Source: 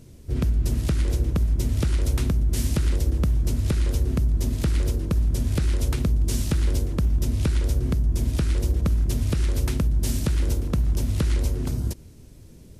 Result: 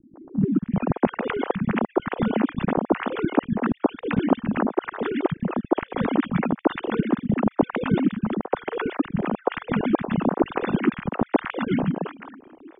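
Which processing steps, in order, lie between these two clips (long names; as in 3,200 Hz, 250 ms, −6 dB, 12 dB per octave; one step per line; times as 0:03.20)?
three sine waves on the formant tracks
high-frequency loss of the air 310 metres
three-band delay without the direct sound lows, mids, highs 140/410 ms, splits 220/1,100 Hz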